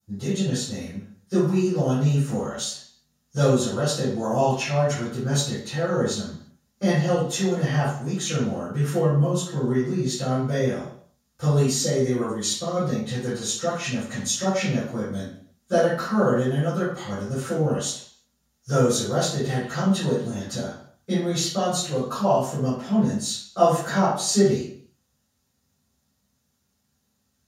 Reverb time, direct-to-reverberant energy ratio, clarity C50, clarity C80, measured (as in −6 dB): 0.55 s, −16.0 dB, 0.5 dB, 5.5 dB